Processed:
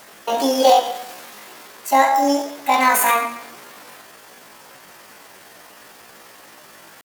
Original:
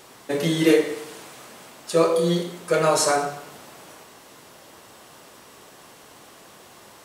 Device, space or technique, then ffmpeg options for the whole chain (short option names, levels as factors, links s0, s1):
chipmunk voice: -af "asetrate=72056,aresample=44100,atempo=0.612027,volume=1.58"